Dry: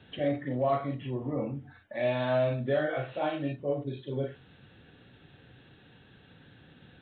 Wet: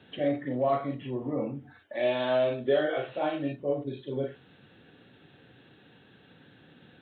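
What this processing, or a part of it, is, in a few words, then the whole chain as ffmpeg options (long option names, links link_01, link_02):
filter by subtraction: -filter_complex "[0:a]asplit=2[link_01][link_02];[link_02]lowpass=280,volume=-1[link_03];[link_01][link_03]amix=inputs=2:normalize=0,asettb=1/sr,asplit=3[link_04][link_05][link_06];[link_04]atrim=end=1.794[link_07];[link_05]atrim=start=1.79:end=3.09,asetpts=PTS-STARTPTS,afade=type=in:duration=0.004:curve=qsin,afade=type=out:start_time=1.296:duration=0.004:curve=qsin,equalizer=frequency=125:width_type=o:width=0.33:gain=-6,equalizer=frequency=200:width_type=o:width=0.33:gain=-11,equalizer=frequency=400:width_type=o:width=0.33:gain=7,equalizer=frequency=3150:width_type=o:width=0.33:gain=8[link_08];[link_06]atrim=start=3.086[link_09];[link_07][link_08]acrossfade=duration=0.004:curve1=hsin:curve2=qsin[link_10];[link_10][link_09]acrossfade=duration=0.004:curve1=qsin:curve2=hsin"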